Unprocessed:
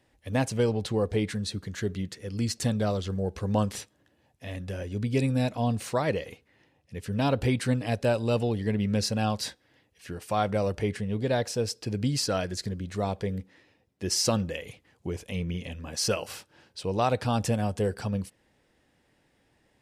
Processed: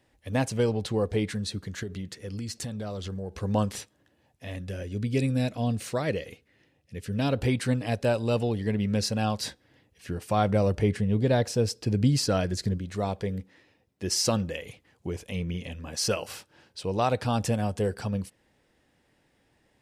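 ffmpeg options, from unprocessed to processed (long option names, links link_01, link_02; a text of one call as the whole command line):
ffmpeg -i in.wav -filter_complex "[0:a]asettb=1/sr,asplit=3[link_01][link_02][link_03];[link_01]atrim=end=1.834[link_04];[link_02]atrim=start=1.83:end=3.4,asetpts=PTS-STARTPTS,afade=type=in:duration=0.004:curve=qsin,afade=type=out:start_time=1.566:duration=0.004:curve=qsin,acompressor=threshold=-31dB:ratio=6:attack=3.2:release=140:knee=1:detection=peak[link_05];[link_03]atrim=start=3.396[link_06];[link_04][link_05]acrossfade=duration=0.004:curve1=hsin:curve2=qsin[link_07];[link_07][link_06]acrossfade=duration=0.004:curve1=qsin:curve2=hsin,asettb=1/sr,asplit=3[link_08][link_09][link_10];[link_08]atrim=end=4.604[link_11];[link_09]atrim=start=4.6:end=7.36,asetpts=PTS-STARTPTS,afade=type=in:duration=0.004:curve=qsin,afade=type=out:start_time=2.756:duration=0.004:curve=qsin,equalizer=frequency=920:width_type=o:width=0.77:gain=-7[link_12];[link_10]atrim=start=7.356[link_13];[link_11][link_12]acrossfade=duration=0.004:curve1=hsin:curve2=qsin[link_14];[link_14][link_13]acrossfade=duration=0.004:curve1=qsin:curve2=hsin,asettb=1/sr,asplit=3[link_15][link_16][link_17];[link_15]atrim=end=9.434[link_18];[link_16]atrim=start=9.43:end=12.78,asetpts=PTS-STARTPTS,afade=type=in:duration=0.004:curve=qsin,afade=type=out:start_time=3.346:duration=0.004:curve=qsin,lowshelf=frequency=370:gain=6.5[link_19];[link_17]atrim=start=12.776[link_20];[link_18][link_19]acrossfade=duration=0.004:curve1=hsin:curve2=qsin[link_21];[link_21][link_20]acrossfade=duration=0.004:curve1=qsin:curve2=hsin" out.wav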